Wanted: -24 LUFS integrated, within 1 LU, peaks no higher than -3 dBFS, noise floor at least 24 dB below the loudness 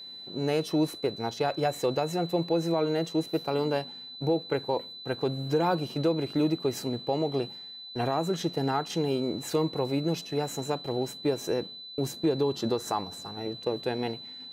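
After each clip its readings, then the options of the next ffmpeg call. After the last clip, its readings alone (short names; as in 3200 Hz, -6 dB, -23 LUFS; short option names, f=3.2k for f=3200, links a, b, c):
steady tone 4000 Hz; tone level -41 dBFS; loudness -29.5 LUFS; peak -16.0 dBFS; loudness target -24.0 LUFS
-> -af "bandreject=f=4k:w=30"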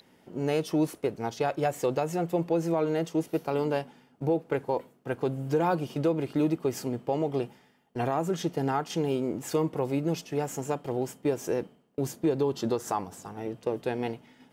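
steady tone none; loudness -30.0 LUFS; peak -16.5 dBFS; loudness target -24.0 LUFS
-> -af "volume=6dB"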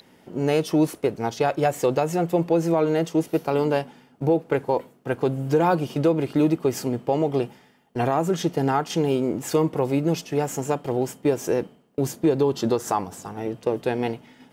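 loudness -24.0 LUFS; peak -10.5 dBFS; noise floor -56 dBFS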